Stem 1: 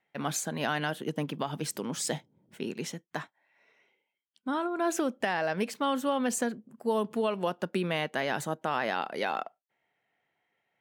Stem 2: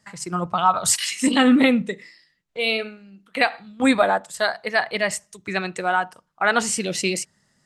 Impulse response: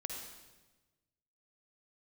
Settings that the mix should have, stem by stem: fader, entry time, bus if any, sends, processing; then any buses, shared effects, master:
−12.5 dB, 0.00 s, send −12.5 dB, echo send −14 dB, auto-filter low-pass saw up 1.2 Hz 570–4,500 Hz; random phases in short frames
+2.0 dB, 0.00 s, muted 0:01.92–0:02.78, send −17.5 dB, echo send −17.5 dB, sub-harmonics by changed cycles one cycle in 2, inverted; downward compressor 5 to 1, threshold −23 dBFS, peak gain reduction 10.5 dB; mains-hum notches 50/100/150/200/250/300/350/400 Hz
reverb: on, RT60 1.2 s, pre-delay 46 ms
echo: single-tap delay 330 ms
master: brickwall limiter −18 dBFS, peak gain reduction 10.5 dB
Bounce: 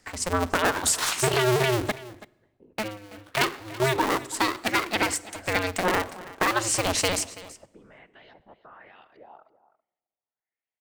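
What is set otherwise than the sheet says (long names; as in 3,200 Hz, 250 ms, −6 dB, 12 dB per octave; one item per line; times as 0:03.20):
stem 1 −12.5 dB → −24.5 dB
master: missing brickwall limiter −18 dBFS, peak gain reduction 10.5 dB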